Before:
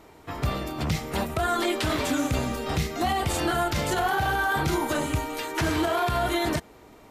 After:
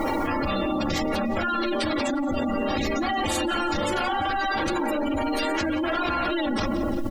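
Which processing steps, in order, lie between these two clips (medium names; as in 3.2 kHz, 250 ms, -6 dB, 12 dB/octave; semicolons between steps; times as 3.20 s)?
tape stop on the ending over 0.75 s; saturation -33 dBFS, distortion -6 dB; peaking EQ 64 Hz -10.5 dB 0.85 oct; comb 3.6 ms, depth 74%; on a send at -7.5 dB: reverberation RT60 2.1 s, pre-delay 3 ms; on the sum: spectral gate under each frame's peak -20 dB strong; added noise white -76 dBFS; peaking EQ 4.9 kHz +2.5 dB; feedback delay 176 ms, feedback 52%, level -20.5 dB; level flattener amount 100%; trim +3 dB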